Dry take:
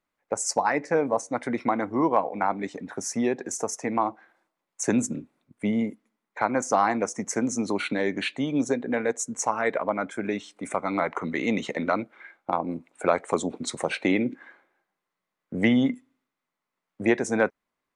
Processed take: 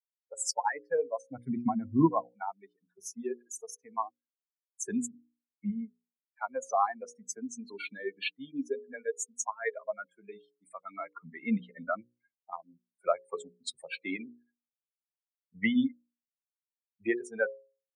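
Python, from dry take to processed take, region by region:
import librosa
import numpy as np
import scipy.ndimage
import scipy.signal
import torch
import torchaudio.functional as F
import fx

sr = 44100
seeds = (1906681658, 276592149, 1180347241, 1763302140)

y = fx.chain(x, sr, fx.bass_treble(bass_db=13, treble_db=2),
    fx.notch(hz=1200.0, q=9.2), at=(1.29, 2.25))
y = fx.chain(y, sr, fx.bandpass_edges(low_hz=120.0, high_hz=2800.0),
    fx.comb(ms=3.7, depth=0.36),
    fx.sustainer(db_per_s=130.0), at=(5.08, 5.7))
y = fx.chain(y, sr, fx.gaussian_blur(sigma=1.6),
    fx.low_shelf(hz=330.0, db=5.5), at=(11.25, 12.12))
y = fx.bin_expand(y, sr, power=3.0)
y = scipy.signal.sosfilt(scipy.signal.butter(2, 99.0, 'highpass', fs=sr, output='sos'), y)
y = fx.hum_notches(y, sr, base_hz=60, count=9)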